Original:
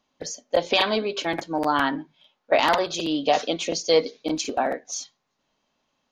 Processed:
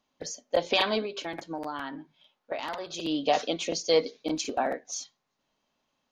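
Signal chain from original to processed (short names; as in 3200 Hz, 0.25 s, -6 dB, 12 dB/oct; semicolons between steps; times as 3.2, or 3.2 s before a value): 1.05–3.05 compressor 4:1, threshold -29 dBFS, peak gain reduction 12.5 dB; gain -4 dB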